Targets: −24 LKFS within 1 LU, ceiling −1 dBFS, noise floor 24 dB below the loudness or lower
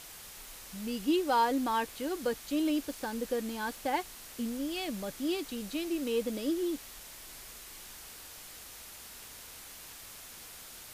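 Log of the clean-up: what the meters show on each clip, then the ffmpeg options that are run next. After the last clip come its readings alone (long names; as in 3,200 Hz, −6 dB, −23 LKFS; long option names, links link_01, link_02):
background noise floor −49 dBFS; target noise floor −57 dBFS; integrated loudness −33.0 LKFS; sample peak −16.5 dBFS; target loudness −24.0 LKFS
→ -af "afftdn=noise_reduction=8:noise_floor=-49"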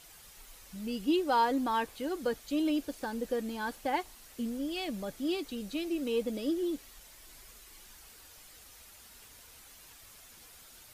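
background noise floor −55 dBFS; target noise floor −57 dBFS
→ -af "afftdn=noise_reduction=6:noise_floor=-55"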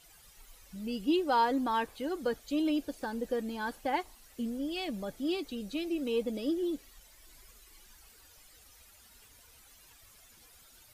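background noise floor −59 dBFS; integrated loudness −33.5 LKFS; sample peak −17.0 dBFS; target loudness −24.0 LKFS
→ -af "volume=9.5dB"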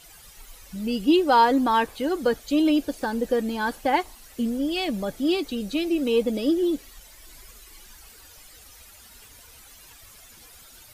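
integrated loudness −24.0 LKFS; sample peak −7.5 dBFS; background noise floor −49 dBFS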